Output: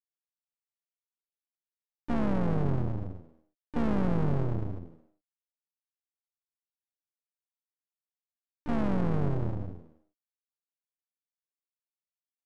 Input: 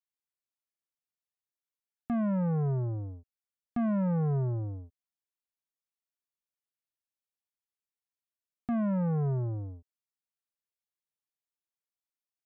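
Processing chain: median filter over 25 samples; on a send: frequency-shifting echo 0.103 s, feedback 34%, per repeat +73 Hz, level -13 dB; on the sum: harmoniser -7 st -11 dB, -3 st -18 dB, +4 st -10 dB; half-wave rectifier; downsampling 22050 Hz; gain +4 dB

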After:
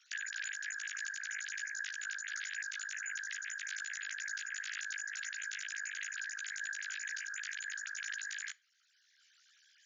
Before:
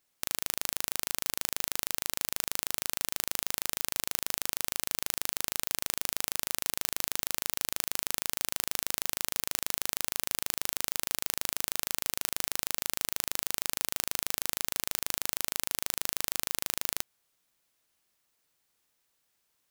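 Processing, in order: sine-wave speech; steep high-pass 580 Hz 48 dB/oct; level quantiser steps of 19 dB; chorus voices 4, 0.14 Hz, delay 28 ms, depth 1.8 ms; speed mistake 7.5 ips tape played at 15 ips; on a send at -19 dB: reverb RT60 0.35 s, pre-delay 6 ms; on the sum: three-band squash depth 40%

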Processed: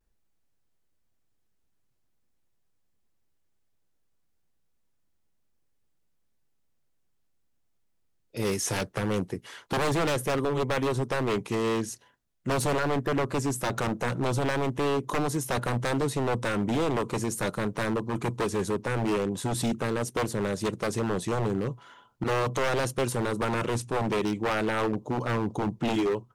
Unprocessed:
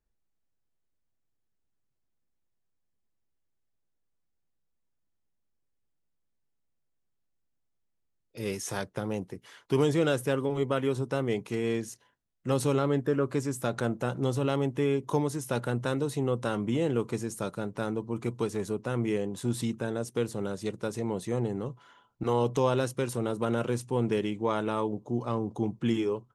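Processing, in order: in parallel at -2 dB: vocal rider 0.5 s; on the sum: wavefolder -20.5 dBFS; vibrato 0.41 Hz 30 cents

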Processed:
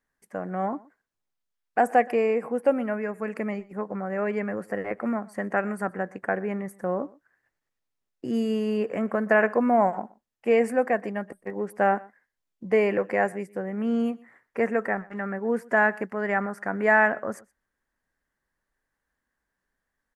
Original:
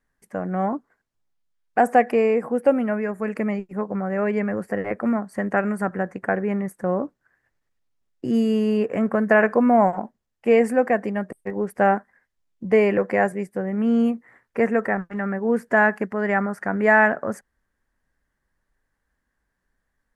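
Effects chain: low shelf 170 Hz -8.5 dB; echo 0.122 s -23 dB; gain -3 dB

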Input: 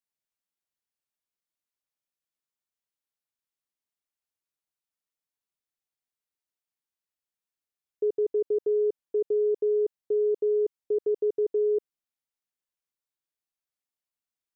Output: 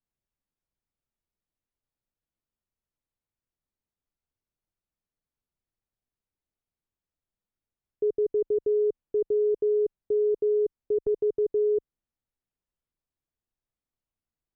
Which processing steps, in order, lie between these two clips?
10.99–11.51 gate with hold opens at -23 dBFS; tilt -4 dB/oct; limiter -20 dBFS, peak gain reduction 6 dB

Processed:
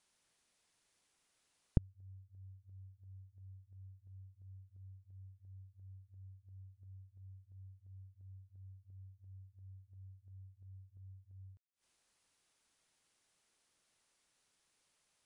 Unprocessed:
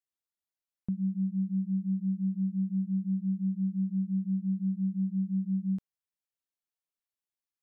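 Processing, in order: flipped gate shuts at -30 dBFS, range -40 dB; speed mistake 15 ips tape played at 7.5 ips; gain +15 dB

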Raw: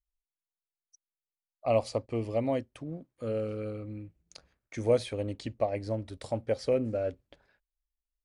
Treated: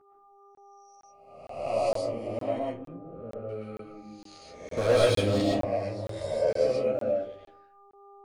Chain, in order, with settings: spectral swells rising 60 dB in 0.94 s; 2.58–3.49 LPF 1100 Hz 12 dB/oct; 4.77–5.41 sample leveller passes 3; 6.06–6.5 comb 1.9 ms, depth 90%; buzz 400 Hz, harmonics 3, -53 dBFS -1 dB/oct; chorus voices 2, 0.37 Hz, delay 12 ms, depth 2 ms; digital reverb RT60 0.49 s, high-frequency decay 0.4×, pre-delay 85 ms, DRR -3 dB; crackling interface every 0.46 s, samples 1024, zero, from 0.55; gain -4.5 dB

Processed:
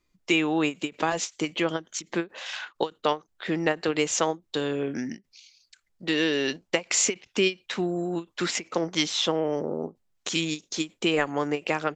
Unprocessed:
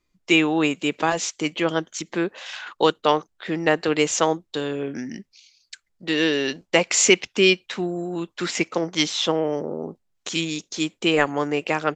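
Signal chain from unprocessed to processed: compressor 2:1, threshold -23 dBFS, peak gain reduction 8 dB; ending taper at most 340 dB/s

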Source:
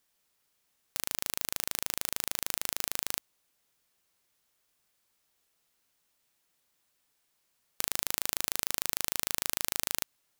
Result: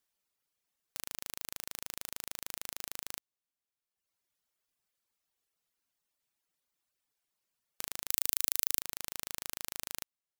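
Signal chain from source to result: reverb removal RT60 1.2 s; 8.1–8.81 tilt +3 dB/oct; gain -7.5 dB

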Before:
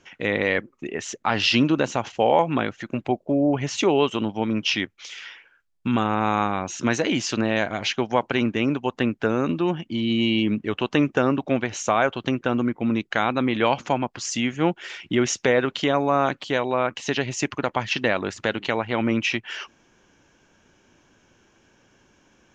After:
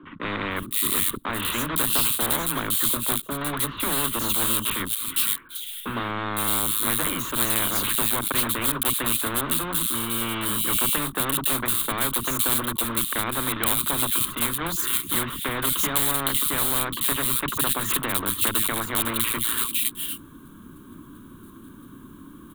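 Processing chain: block floating point 3-bit; EQ curve 110 Hz 0 dB, 280 Hz +10 dB, 480 Hz -13 dB, 800 Hz -22 dB, 1100 Hz +4 dB, 1800 Hz -15 dB, 2600 Hz -17 dB, 3700 Hz -5 dB, 5400 Hz -30 dB, 9300 Hz -1 dB; three bands offset in time mids, lows, highs 30/510 ms, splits 230/2700 Hz; spectral compressor 4:1

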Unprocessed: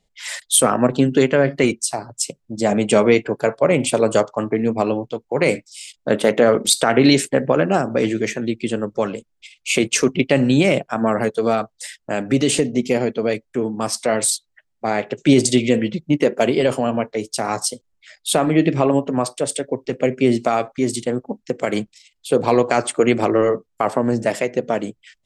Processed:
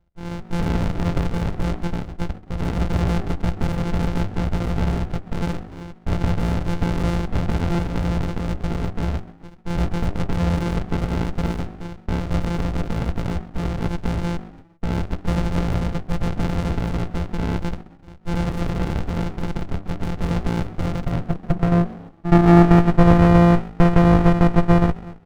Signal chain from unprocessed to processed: sample sorter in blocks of 256 samples; bell 650 Hz +14.5 dB 0.69 oct; de-hum 99.55 Hz, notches 4; in parallel at +2 dB: limiter -12.5 dBFS, peak gain reduction 16 dB; on the sum: soft clip -3.5 dBFS, distortion -13 dB; on a send: frequency-shifting echo 0.134 s, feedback 37%, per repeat +51 Hz, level -21 dB; on the sum: high-pass sweep 64 Hz -> 500 Hz, 20.39–23; air absorption 490 m; running maximum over 65 samples

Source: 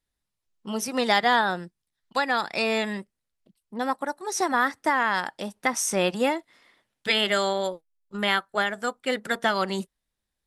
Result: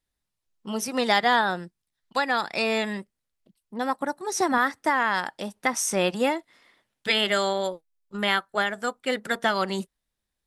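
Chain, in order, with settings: 4–4.58 bell 130 Hz +11 dB 1.7 oct

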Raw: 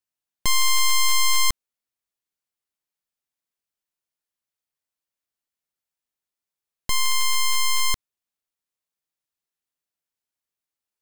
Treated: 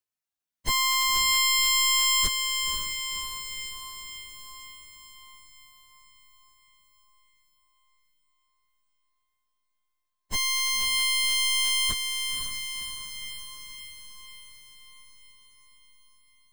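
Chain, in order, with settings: plain phase-vocoder stretch 1.5×; on a send: diffused feedback echo 0.522 s, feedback 59%, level -6 dB

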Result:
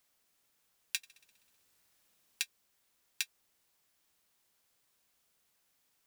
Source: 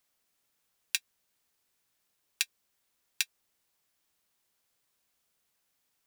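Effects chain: limiter -11.5 dBFS, peak gain reduction 8 dB; 0.97–2.42 flutter echo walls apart 10.9 m, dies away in 1.3 s; gain +2 dB

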